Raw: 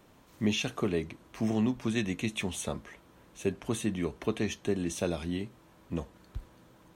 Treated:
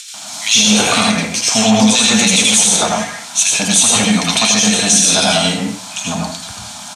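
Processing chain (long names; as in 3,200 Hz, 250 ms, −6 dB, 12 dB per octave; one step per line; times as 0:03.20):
Chebyshev band-stop filter 290–630 Hz, order 5
spectral tilt +4.5 dB per octave
upward compression, threshold −50 dBFS
tube saturation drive 27 dB, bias 0.5
loudspeaker in its box 140–8,300 Hz, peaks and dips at 150 Hz −5 dB, 270 Hz −8 dB, 480 Hz +8 dB, 1,100 Hz −6 dB, 1,900 Hz −8 dB, 2,800 Hz −5 dB
multiband delay without the direct sound highs, lows 140 ms, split 2,000 Hz
convolution reverb RT60 0.45 s, pre-delay 75 ms, DRR −1 dB
boost into a limiter +30 dB
level −1 dB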